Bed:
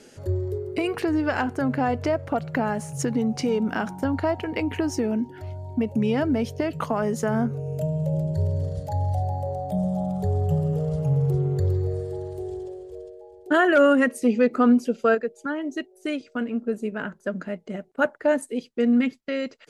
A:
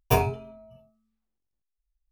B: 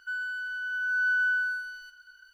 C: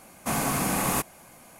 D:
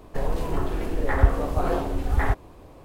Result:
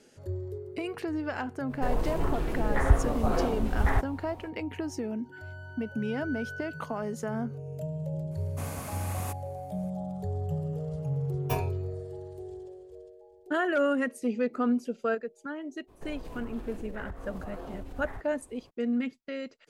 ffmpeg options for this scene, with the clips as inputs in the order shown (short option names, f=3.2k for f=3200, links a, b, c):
-filter_complex "[4:a]asplit=2[a][b];[0:a]volume=-9dB[c];[b]acompressor=threshold=-25dB:ratio=6:attack=3.2:release=140:knee=1:detection=peak[d];[a]atrim=end=2.84,asetpts=PTS-STARTPTS,volume=-3dB,afade=t=in:d=0.05,afade=t=out:st=2.79:d=0.05,adelay=1670[e];[2:a]atrim=end=2.33,asetpts=PTS-STARTPTS,volume=-15.5dB,afade=t=in:d=0.004:c=hsin,afade=t=out:st=2.326:d=0.004:c=hsin,adelay=231525S[f];[3:a]atrim=end=1.59,asetpts=PTS-STARTPTS,volume=-13.5dB,afade=t=in:d=0.004:c=hsin,afade=t=out:st=1.586:d=0.004:c=hsin,adelay=8310[g];[1:a]atrim=end=2.11,asetpts=PTS-STARTPTS,volume=-9.5dB,afade=t=in:d=0.004:c=hsin,afade=t=out:st=2.106:d=0.004:c=hsin,adelay=11390[h];[d]atrim=end=2.84,asetpts=PTS-STARTPTS,volume=-11dB,afade=t=in:d=0.02,afade=t=out:st=2.82:d=0.02,adelay=15870[i];[c][e][f][g][h][i]amix=inputs=6:normalize=0"